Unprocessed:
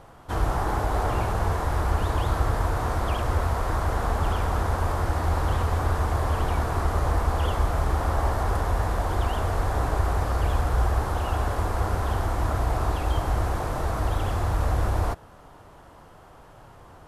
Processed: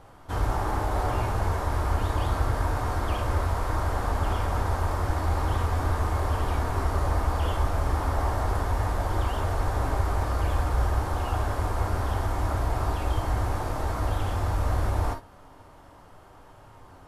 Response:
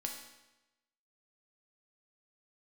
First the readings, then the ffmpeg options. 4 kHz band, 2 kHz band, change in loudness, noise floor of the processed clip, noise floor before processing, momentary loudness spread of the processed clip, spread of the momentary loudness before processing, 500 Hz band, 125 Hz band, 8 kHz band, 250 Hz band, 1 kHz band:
−2.0 dB, −2.0 dB, −1.5 dB, −50 dBFS, −49 dBFS, 2 LU, 2 LU, −2.5 dB, −1.5 dB, −2.0 dB, −1.5 dB, −2.0 dB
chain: -filter_complex "[1:a]atrim=start_sample=2205,atrim=end_sample=3528,asetrate=48510,aresample=44100[link_01];[0:a][link_01]afir=irnorm=-1:irlink=0"

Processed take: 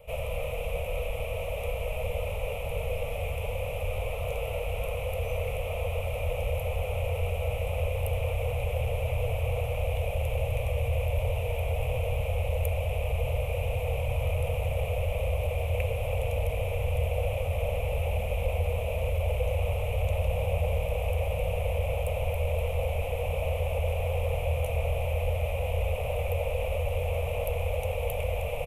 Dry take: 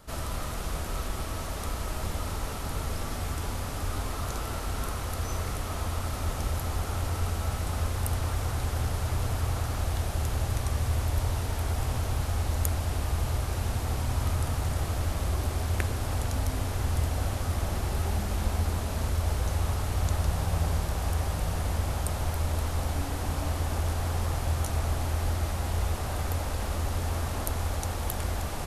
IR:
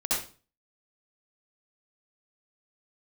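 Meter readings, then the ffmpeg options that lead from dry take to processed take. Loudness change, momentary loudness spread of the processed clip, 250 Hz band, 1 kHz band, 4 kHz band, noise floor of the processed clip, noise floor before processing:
+0.5 dB, 4 LU, −10.5 dB, −2.5 dB, −3.5 dB, −33 dBFS, −34 dBFS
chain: -af "asoftclip=type=tanh:threshold=-17dB,firequalizer=gain_entry='entry(120,0);entry(340,-28);entry(480,15);entry(790,-1);entry(1600,-21);entry(2400,12);entry(4400,-21);entry(12000,-3)':delay=0.05:min_phase=1"

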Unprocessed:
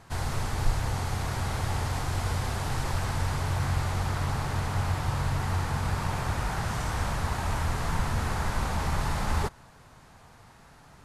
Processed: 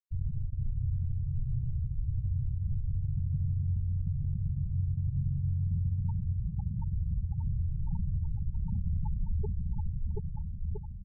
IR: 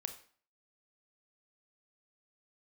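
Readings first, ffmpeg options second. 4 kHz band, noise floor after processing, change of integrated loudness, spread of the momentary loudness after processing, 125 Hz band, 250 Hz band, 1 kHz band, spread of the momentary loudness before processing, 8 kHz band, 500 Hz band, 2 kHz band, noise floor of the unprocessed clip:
below −40 dB, −38 dBFS, −3.5 dB, 5 LU, −1.0 dB, −5.0 dB, below −25 dB, 2 LU, below −40 dB, below −15 dB, below −40 dB, −54 dBFS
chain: -af "afftfilt=real='re*gte(hypot(re,im),0.2)':imag='im*gte(hypot(re,im),0.2)':win_size=1024:overlap=0.75,aecho=1:1:730|1314|1781|2155|2454:0.631|0.398|0.251|0.158|0.1,alimiter=level_in=0.5dB:limit=-24dB:level=0:latency=1:release=76,volume=-0.5dB,equalizer=frequency=190:width_type=o:width=0.52:gain=7"

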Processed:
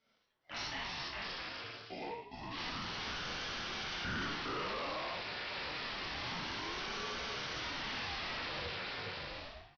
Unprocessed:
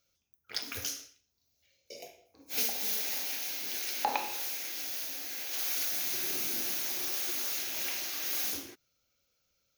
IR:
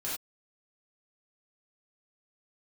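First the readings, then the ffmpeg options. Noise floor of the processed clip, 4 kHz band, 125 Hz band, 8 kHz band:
−72 dBFS, −2.0 dB, can't be measured, −19.0 dB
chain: -filter_complex "[0:a]aecho=1:1:410|656|803.6|892.2|945.3:0.631|0.398|0.251|0.158|0.1[link_01];[1:a]atrim=start_sample=2205,asetrate=41454,aresample=44100[link_02];[link_01][link_02]afir=irnorm=-1:irlink=0,asplit=2[link_03][link_04];[link_04]highpass=frequency=720:poles=1,volume=17dB,asoftclip=type=tanh:threshold=-14dB[link_05];[link_03][link_05]amix=inputs=2:normalize=0,lowpass=frequency=1200:poles=1,volume=-6dB,aresample=11025,asoftclip=type=tanh:threshold=-34dB,aresample=44100,aeval=exprs='val(0)*sin(2*PI*480*n/s+480*0.65/0.28*sin(2*PI*0.28*n/s))':channel_layout=same,volume=1dB"

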